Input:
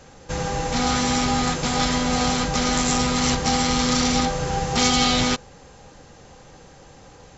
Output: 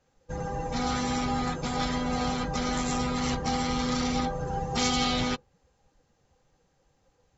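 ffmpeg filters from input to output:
ffmpeg -i in.wav -af "afftdn=noise_reduction=17:noise_floor=-30,adynamicequalizer=threshold=0.0141:dfrequency=4300:dqfactor=0.7:tfrequency=4300:tqfactor=0.7:attack=5:release=100:ratio=0.375:range=3.5:mode=cutabove:tftype=highshelf,volume=-6.5dB" out.wav

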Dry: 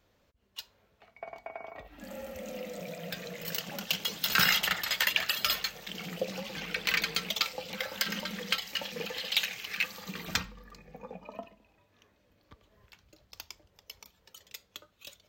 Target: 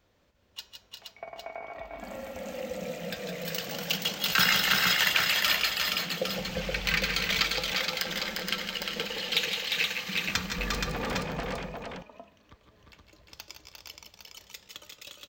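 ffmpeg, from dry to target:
ffmpeg -i in.wav -filter_complex "[0:a]asplit=3[link_01][link_02][link_03];[link_01]afade=type=out:start_time=6.37:duration=0.02[link_04];[link_02]asubboost=boost=10.5:cutoff=90,afade=type=in:start_time=6.37:duration=0.02,afade=type=out:start_time=6.9:duration=0.02[link_05];[link_03]afade=type=in:start_time=6.9:duration=0.02[link_06];[link_04][link_05][link_06]amix=inputs=3:normalize=0,asettb=1/sr,asplit=3[link_07][link_08][link_09];[link_07]atrim=end=7.854[link_10];[link_08]atrim=start=7.85:end=9,asetpts=PTS-STARTPTS,afade=type=in:duration=0.004:curve=qsin,afade=type=out:start_time=1.146:duration=0.004:curve=qsin,tremolo=f=160:d=0.667[link_11];[link_09]atrim=start=8.996[link_12];[link_10][link_11]acrossfade=duration=0.004:curve1=hsin:curve2=qsin[link_13];[link_13][link_12]acrossfade=duration=0.004:curve1=qsin:curve2=hsin,asettb=1/sr,asplit=3[link_14][link_15][link_16];[link_14]atrim=end=10.584[link_17];[link_15]atrim=start=10.58:end=11.22,asetpts=PTS-STARTPTS,afade=type=in:duration=0.004:curve=qsin,afade=type=out:start_time=0.636:duration=0.004:curve=qsin,aeval=exprs='0.0299*sin(PI/2*6.31*val(0)/0.0299)':channel_layout=same[link_18];[link_16]atrim=start=11.216[link_19];[link_17][link_18]acrossfade=duration=0.004:curve1=hsin:curve2=qsin[link_20];[link_20][link_19]acrossfade=duration=0.004:curve1=qsin:curve2=hsin,equalizer=frequency=12000:width_type=o:width=0.31:gain=-11.5,bandreject=frequency=210.6:width_type=h:width=4,bandreject=frequency=421.2:width_type=h:width=4,bandreject=frequency=631.8:width_type=h:width=4,bandreject=frequency=842.4:width_type=h:width=4,bandreject=frequency=1053:width_type=h:width=4,bandreject=frequency=1263.6:width_type=h:width=4,bandreject=frequency=1474.2:width_type=h:width=4,bandreject=frequency=1684.8:width_type=h:width=4,bandreject=frequency=1895.4:width_type=h:width=4,bandreject=frequency=2106:width_type=h:width=4,bandreject=frequency=2316.6:width_type=h:width=4,bandreject=frequency=2527.2:width_type=h:width=4,bandreject=frequency=2737.8:width_type=h:width=4,bandreject=frequency=2948.4:width_type=h:width=4,bandreject=frequency=3159:width_type=h:width=4,bandreject=frequency=3369.6:width_type=h:width=4,bandreject=frequency=3580.2:width_type=h:width=4,bandreject=frequency=3790.8:width_type=h:width=4,bandreject=frequency=4001.4:width_type=h:width=4,bandreject=frequency=4212:width_type=h:width=4,bandreject=frequency=4422.6:width_type=h:width=4,bandreject=frequency=4633.2:width_type=h:width=4,bandreject=frequency=4843.8:width_type=h:width=4,bandreject=frequency=5054.4:width_type=h:width=4,bandreject=frequency=5265:width_type=h:width=4,bandreject=frequency=5475.6:width_type=h:width=4,bandreject=frequency=5686.2:width_type=h:width=4,bandreject=frequency=5896.8:width_type=h:width=4,bandreject=frequency=6107.4:width_type=h:width=4,bandreject=frequency=6318:width_type=h:width=4,bandreject=frequency=6528.6:width_type=h:width=4,bandreject=frequency=6739.2:width_type=h:width=4,bandreject=frequency=6949.8:width_type=h:width=4,bandreject=frequency=7160.4:width_type=h:width=4,bandreject=frequency=7371:width_type=h:width=4,bandreject=frequency=7581.6:width_type=h:width=4,asplit=2[link_21][link_22];[link_22]aecho=0:1:148|164|352|383|473|807:0.224|0.447|0.596|0.237|0.596|0.447[link_23];[link_21][link_23]amix=inputs=2:normalize=0,volume=1dB" out.wav

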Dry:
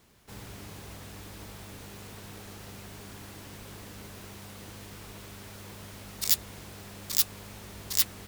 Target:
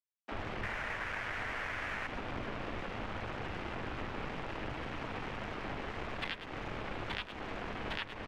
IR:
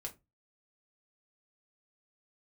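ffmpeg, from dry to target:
-filter_complex "[0:a]asettb=1/sr,asplit=3[link_01][link_02][link_03];[link_01]atrim=end=0.634[link_04];[link_02]atrim=start=0.63:end=2.07,asetpts=PTS-STARTPTS,afade=type=in:duration=0.004:curve=qsin,afade=type=out:start_time=1.436:duration=0.004:curve=qsin,equalizer=frequency=125:width_type=o:width=1:gain=6,equalizer=frequency=250:width_type=o:width=1:gain=-6,equalizer=frequency=500:width_type=o:width=1:gain=-6,equalizer=frequency=2000:width_type=o:width=1:gain=12[link_05];[link_03]atrim=start=2.066[link_06];[link_04][link_05]acrossfade=duration=0.004:curve1=hsin:curve2=qsin[link_07];[link_07][link_06]acrossfade=duration=0.004:curve1=qsin:curve2=hsin,asplit=2[link_08][link_09];[link_09]aecho=0:1:102:0.282[link_10];[link_08][link_10]amix=inputs=2:normalize=0,highpass=frequency=180:width_type=q:width=0.5412,highpass=frequency=180:width_type=q:width=1.307,lowpass=frequency=3200:width_type=q:width=0.5176,lowpass=frequency=3200:width_type=q:width=0.7071,lowpass=frequency=3200:width_type=q:width=1.932,afreqshift=-190,aeval=exprs='sgn(val(0))*max(abs(val(0))-0.00224,0)':channel_layout=same,acompressor=threshold=-48dB:ratio=10,aemphasis=mode=reproduction:type=75kf,acrossover=split=200[link_11][link_12];[link_11]adelay=30[link_13];[link_13][link_12]amix=inputs=2:normalize=0,volume=16.5dB"

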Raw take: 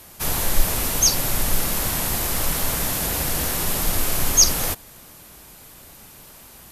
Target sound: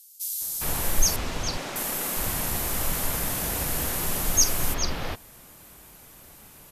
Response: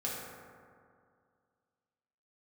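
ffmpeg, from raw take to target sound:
-filter_complex "[0:a]asettb=1/sr,asplit=3[link_01][link_02][link_03];[link_01]atrim=end=1.164[link_04];[link_02]atrim=start=1.16:end=1.76,asetpts=PTS-STARTPTS,afade=type=in:duration=0.004:curve=qsin,afade=type=out:start_time=0.596:duration=0.004:curve=qsin,acrossover=split=180 6300:gain=0.0891 1 0.0631[link_05][link_06][link_07];[link_05][link_06][link_07]amix=inputs=3:normalize=0[link_08];[link_03]atrim=start=1.756[link_09];[link_04][link_08]acrossfade=duration=0.004:curve1=hsin:curve2=qsin[link_10];[link_10][link_09]acrossfade=duration=0.004:curve1=qsin:curve2=hsin,acrossover=split=4500[link_11][link_12];[link_11]adelay=410[link_13];[link_13][link_12]amix=inputs=2:normalize=0,volume=-4dB"

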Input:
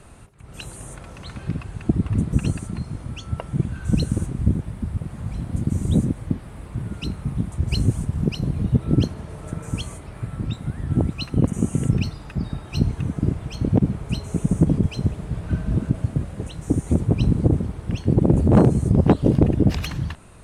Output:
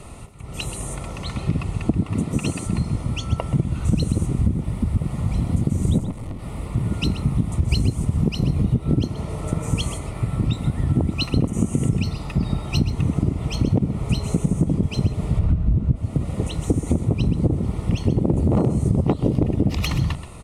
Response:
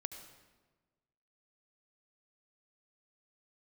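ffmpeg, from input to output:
-filter_complex "[0:a]asettb=1/sr,asplit=3[link_01][link_02][link_03];[link_01]atrim=end=2.044[link_04];[link_02]atrim=start=2.04:end=2.66,asetpts=PTS-STARTPTS,afade=type=in:duration=0.004:curve=qsin,afade=type=out:start_time=0.616:duration=0.004:curve=qsin,highpass=frequency=340:poles=1[link_05];[link_03]atrim=start=2.656[link_06];[link_04][link_05]acrossfade=duration=0.004:curve1=hsin:curve2=qsin[link_07];[link_07][link_06]acrossfade=duration=0.004:curve1=qsin:curve2=hsin,asplit=3[link_08][link_09][link_10];[link_08]afade=type=out:start_time=15.38:duration=0.02[link_11];[link_09]aemphasis=mode=reproduction:type=bsi,afade=type=in:start_time=15.38:duration=0.02,afade=type=out:start_time=15.95:duration=0.02[link_12];[link_10]afade=type=in:start_time=15.95:duration=0.02[link_13];[link_11][link_12][link_13]amix=inputs=3:normalize=0,acompressor=threshold=-22dB:ratio=12,asettb=1/sr,asplit=3[link_14][link_15][link_16];[link_14]atrim=end=5.984[link_17];[link_15]atrim=start=5.98:end=6.4,asetpts=PTS-STARTPTS,afade=type=in:duration=0.004:curve=qsin,afade=type=out:start_time=0.416:duration=0.004:curve=qsin,aeval=exprs='(tanh(50.1*val(0)+0.5)-tanh(0.5))/50.1':channel_layout=same[link_18];[link_16]atrim=start=6.396[link_19];[link_17][link_18]acrossfade=duration=0.004:curve1=hsin:curve2=qsin[link_20];[link_20][link_19]acrossfade=duration=0.004:curve1=qsin:curve2=hsin,asuperstop=centerf=1600:order=4:qfactor=4.2,aecho=1:1:129:0.237,volume=7dB"

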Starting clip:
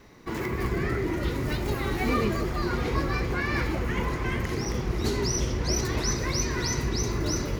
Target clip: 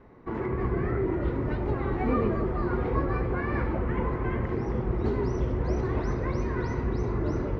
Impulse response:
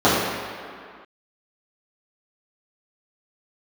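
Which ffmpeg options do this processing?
-filter_complex "[0:a]lowpass=1300,asplit=2[link_01][link_02];[1:a]atrim=start_sample=2205,asetrate=52920,aresample=44100[link_03];[link_02][link_03]afir=irnorm=-1:irlink=0,volume=-36dB[link_04];[link_01][link_04]amix=inputs=2:normalize=0"

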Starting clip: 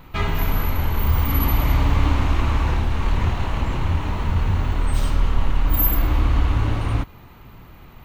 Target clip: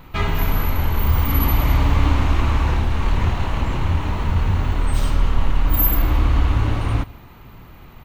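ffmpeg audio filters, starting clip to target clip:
ffmpeg -i in.wav -af "aecho=1:1:152:0.075,volume=1.5dB" out.wav

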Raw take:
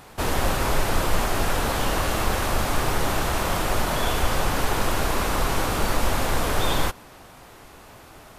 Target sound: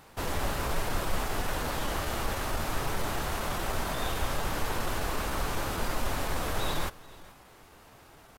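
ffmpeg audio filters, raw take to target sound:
ffmpeg -i in.wav -af "aecho=1:1:431:0.0841,asetrate=46722,aresample=44100,atempo=0.943874,volume=-8dB" out.wav

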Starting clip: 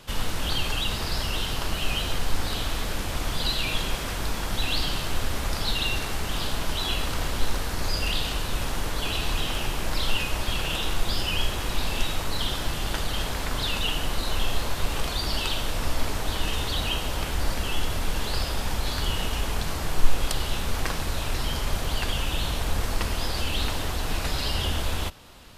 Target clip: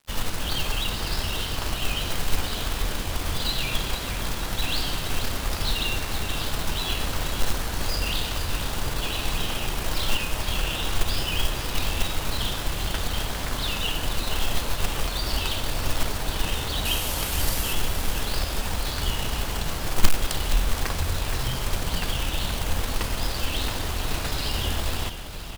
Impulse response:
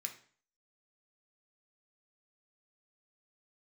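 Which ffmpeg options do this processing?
-filter_complex "[0:a]asettb=1/sr,asplit=3[link_01][link_02][link_03];[link_01]atrim=end=16.854[link_04];[link_02]atrim=start=16.85:end=17.73,asetpts=PTS-STARTPTS,afade=type=in:duration=0.004:curve=qsin,afade=type=out:start_time=0.876:duration=0.004:curve=qsin,aemphasis=mode=production:type=50kf[link_05];[link_03]atrim=start=17.726[link_06];[link_04][link_05]acrossfade=duration=0.004:curve1=hsin:curve2=qsin[link_07];[link_07][link_06]acrossfade=duration=0.004:curve1=qsin:curve2=hsin,acrusher=bits=3:mode=log:mix=0:aa=0.000001,aeval=exprs='sgn(val(0))*max(abs(val(0))-0.00708,0)':channel_layout=same,asplit=2[link_08][link_09];[link_09]asplit=6[link_10][link_11][link_12][link_13][link_14][link_15];[link_10]adelay=470,afreqshift=-45,volume=-9.5dB[link_16];[link_11]adelay=940,afreqshift=-90,volume=-15.3dB[link_17];[link_12]adelay=1410,afreqshift=-135,volume=-21.2dB[link_18];[link_13]adelay=1880,afreqshift=-180,volume=-27dB[link_19];[link_14]adelay=2350,afreqshift=-225,volume=-32.9dB[link_20];[link_15]adelay=2820,afreqshift=-270,volume=-38.7dB[link_21];[link_16][link_17][link_18][link_19][link_20][link_21]amix=inputs=6:normalize=0[link_22];[link_08][link_22]amix=inputs=2:normalize=0"

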